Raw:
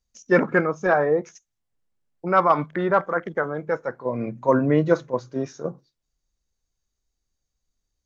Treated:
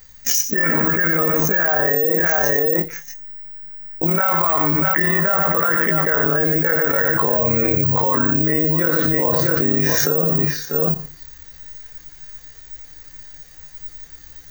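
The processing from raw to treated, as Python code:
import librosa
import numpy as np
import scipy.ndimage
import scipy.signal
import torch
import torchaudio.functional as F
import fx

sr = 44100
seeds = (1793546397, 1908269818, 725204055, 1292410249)

p1 = fx.peak_eq(x, sr, hz=1800.0, db=13.0, octaves=0.49)
p2 = p1 + 0.54 * np.pad(p1, (int(6.6 * sr / 1000.0), 0))[:len(p1)]
p3 = fx.rider(p2, sr, range_db=5, speed_s=2.0)
p4 = p2 + F.gain(torch.from_numpy(p3), 0.5).numpy()
p5 = fx.stretch_grains(p4, sr, factor=1.8, grain_ms=58.0)
p6 = p5 + fx.echo_multitap(p5, sr, ms=(95, 644), db=(-12.5, -20.0), dry=0)
p7 = (np.kron(p6[::2], np.eye(2)[0]) * 2)[:len(p6)]
p8 = fx.env_flatten(p7, sr, amount_pct=100)
y = F.gain(torch.from_numpy(p8), -16.0).numpy()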